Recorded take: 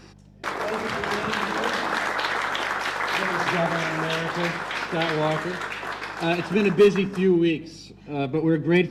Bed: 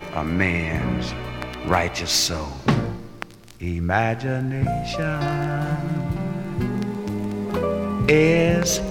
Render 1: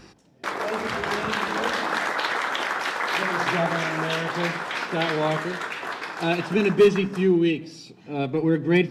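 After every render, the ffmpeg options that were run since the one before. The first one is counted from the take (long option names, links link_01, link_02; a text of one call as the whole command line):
ffmpeg -i in.wav -af "bandreject=frequency=50:width_type=h:width=4,bandreject=frequency=100:width_type=h:width=4,bandreject=frequency=150:width_type=h:width=4,bandreject=frequency=200:width_type=h:width=4" out.wav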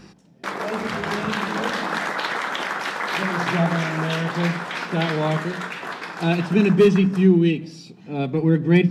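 ffmpeg -i in.wav -af "equalizer=frequency=180:width_type=o:width=0.63:gain=10.5,bandreject=frequency=60:width_type=h:width=6,bandreject=frequency=120:width_type=h:width=6,bandreject=frequency=180:width_type=h:width=6" out.wav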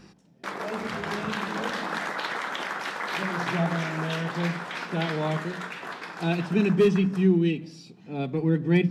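ffmpeg -i in.wav -af "volume=-5.5dB" out.wav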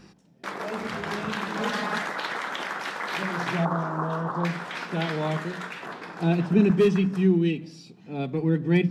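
ffmpeg -i in.wav -filter_complex "[0:a]asettb=1/sr,asplit=3[link_01][link_02][link_03];[link_01]atrim=end=1.594[link_04];[link_02]atrim=start=1.59:end=2.02,asetpts=PTS-STARTPTS,afade=type=in:duration=0.004:curve=qsin,afade=type=out:start_time=0.426:duration=0.004:curve=qsin,aecho=1:1:4.8:0.84,atrim=end_sample=18963[link_05];[link_03]atrim=start=2.016[link_06];[link_04][link_05]acrossfade=duration=0.004:curve1=hsin:curve2=qsin[link_07];[link_07][link_06]acrossfade=duration=0.004:curve1=qsin:curve2=hsin,asettb=1/sr,asplit=3[link_08][link_09][link_10];[link_08]atrim=end=3.654[link_11];[link_09]atrim=start=3.65:end=4.45,asetpts=PTS-STARTPTS,afade=type=in:duration=0.004:curve=qsin,afade=type=out:start_time=0.796:duration=0.004:curve=qsin,highshelf=frequency=1600:width_type=q:width=3:gain=-12[link_12];[link_10]atrim=start=4.446[link_13];[link_11][link_12]acrossfade=duration=0.004:curve1=hsin:curve2=qsin[link_14];[link_14][link_13]acrossfade=duration=0.004:curve1=qsin:curve2=hsin,asettb=1/sr,asplit=3[link_15][link_16][link_17];[link_15]atrim=end=5.864[link_18];[link_16]atrim=start=5.86:end=6.71,asetpts=PTS-STARTPTS,afade=type=in:duration=0.004:curve=qsin,afade=type=out:start_time=0.846:duration=0.004:curve=qsin,tiltshelf=frequency=870:gain=4.5[link_19];[link_17]atrim=start=6.706[link_20];[link_18][link_19]acrossfade=duration=0.004:curve1=hsin:curve2=qsin[link_21];[link_21][link_20]acrossfade=duration=0.004:curve1=qsin:curve2=hsin" out.wav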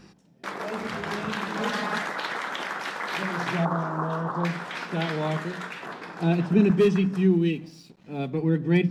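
ffmpeg -i in.wav -filter_complex "[0:a]asettb=1/sr,asplit=3[link_01][link_02][link_03];[link_01]atrim=end=7.314[link_04];[link_02]atrim=start=7.31:end=8.29,asetpts=PTS-STARTPTS,afade=type=in:duration=0.004:curve=qsin,afade=type=out:start_time=0.976:duration=0.004:curve=qsin,aeval=exprs='sgn(val(0))*max(abs(val(0))-0.00158,0)':channel_layout=same[link_05];[link_03]atrim=start=8.286[link_06];[link_04][link_05]acrossfade=duration=0.004:curve1=hsin:curve2=qsin[link_07];[link_07][link_06]acrossfade=duration=0.004:curve1=qsin:curve2=hsin" out.wav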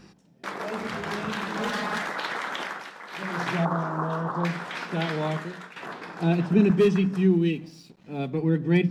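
ffmpeg -i in.wav -filter_complex "[0:a]asettb=1/sr,asplit=3[link_01][link_02][link_03];[link_01]atrim=end=0.784[link_04];[link_02]atrim=start=0.78:end=2.1,asetpts=PTS-STARTPTS,afade=type=in:duration=0.004:curve=qsin,afade=type=out:start_time=1.316:duration=0.004:curve=qsin,asoftclip=type=hard:threshold=-23dB[link_05];[link_03]atrim=start=2.096[link_06];[link_04][link_05]acrossfade=duration=0.004:curve1=hsin:curve2=qsin[link_07];[link_07][link_06]acrossfade=duration=0.004:curve1=qsin:curve2=hsin,asplit=4[link_08][link_09][link_10][link_11];[link_08]atrim=end=2.9,asetpts=PTS-STARTPTS,afade=type=out:start_time=2.62:duration=0.28:silence=0.298538[link_12];[link_09]atrim=start=2.9:end=3.1,asetpts=PTS-STARTPTS,volume=-10.5dB[link_13];[link_10]atrim=start=3.1:end=5.76,asetpts=PTS-STARTPTS,afade=type=in:duration=0.28:silence=0.298538,afade=type=out:start_time=2.14:duration=0.52:silence=0.281838[link_14];[link_11]atrim=start=5.76,asetpts=PTS-STARTPTS,afade=type=in:duration=0.004:curve=hsin:silence=0.281838[link_15];[link_12][link_13][link_14][link_15]concat=n=4:v=0:a=1" out.wav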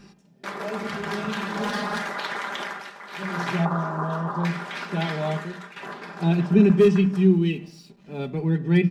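ffmpeg -i in.wav -af "aecho=1:1:5:0.54,bandreject=frequency=114.6:width_type=h:width=4,bandreject=frequency=229.2:width_type=h:width=4,bandreject=frequency=343.8:width_type=h:width=4,bandreject=frequency=458.4:width_type=h:width=4,bandreject=frequency=573:width_type=h:width=4,bandreject=frequency=687.6:width_type=h:width=4,bandreject=frequency=802.2:width_type=h:width=4,bandreject=frequency=916.8:width_type=h:width=4,bandreject=frequency=1031.4:width_type=h:width=4,bandreject=frequency=1146:width_type=h:width=4,bandreject=frequency=1260.6:width_type=h:width=4,bandreject=frequency=1375.2:width_type=h:width=4,bandreject=frequency=1489.8:width_type=h:width=4,bandreject=frequency=1604.4:width_type=h:width=4,bandreject=frequency=1719:width_type=h:width=4,bandreject=frequency=1833.6:width_type=h:width=4,bandreject=frequency=1948.2:width_type=h:width=4,bandreject=frequency=2062.8:width_type=h:width=4,bandreject=frequency=2177.4:width_type=h:width=4,bandreject=frequency=2292:width_type=h:width=4,bandreject=frequency=2406.6:width_type=h:width=4,bandreject=frequency=2521.2:width_type=h:width=4,bandreject=frequency=2635.8:width_type=h:width=4,bandreject=frequency=2750.4:width_type=h:width=4,bandreject=frequency=2865:width_type=h:width=4,bandreject=frequency=2979.6:width_type=h:width=4,bandreject=frequency=3094.2:width_type=h:width=4" out.wav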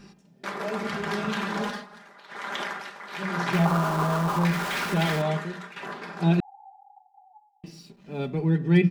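ffmpeg -i in.wav -filter_complex "[0:a]asettb=1/sr,asplit=3[link_01][link_02][link_03];[link_01]atrim=end=3.534[link_04];[link_02]atrim=start=3.53:end=5.22,asetpts=PTS-STARTPTS,afade=type=in:duration=0.004:curve=qsin,afade=type=out:start_time=1.686:duration=0.004:curve=qsin,aeval=exprs='val(0)+0.5*0.0355*sgn(val(0))':channel_layout=same[link_05];[link_03]atrim=start=5.216[link_06];[link_04][link_05]acrossfade=duration=0.004:curve1=hsin:curve2=qsin[link_07];[link_07][link_06]acrossfade=duration=0.004:curve1=qsin:curve2=hsin,asettb=1/sr,asplit=3[link_08][link_09][link_10];[link_08]atrim=end=6.404[link_11];[link_09]atrim=start=6.4:end=7.64,asetpts=PTS-STARTPTS,afade=type=in:duration=0.004:curve=qsin,afade=type=out:start_time=1.236:duration=0.004:curve=qsin,asuperpass=centerf=800:order=12:qfactor=5.5[link_12];[link_10]atrim=start=7.636[link_13];[link_11][link_12]acrossfade=duration=0.004:curve1=hsin:curve2=qsin[link_14];[link_14][link_13]acrossfade=duration=0.004:curve1=qsin:curve2=hsin,asplit=3[link_15][link_16][link_17];[link_15]atrim=end=1.86,asetpts=PTS-STARTPTS,afade=type=out:start_time=1.57:duration=0.29:silence=0.1[link_18];[link_16]atrim=start=1.86:end=2.27,asetpts=PTS-STARTPTS,volume=-20dB[link_19];[link_17]atrim=start=2.27,asetpts=PTS-STARTPTS,afade=type=in:duration=0.29:silence=0.1[link_20];[link_18][link_19][link_20]concat=n=3:v=0:a=1" out.wav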